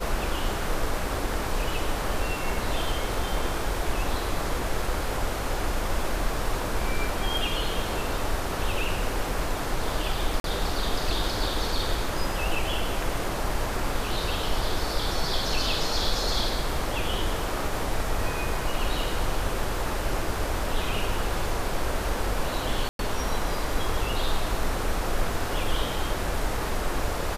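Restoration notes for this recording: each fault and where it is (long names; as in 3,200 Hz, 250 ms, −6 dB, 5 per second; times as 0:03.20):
0:10.40–0:10.44: drop-out 42 ms
0:22.89–0:22.99: drop-out 102 ms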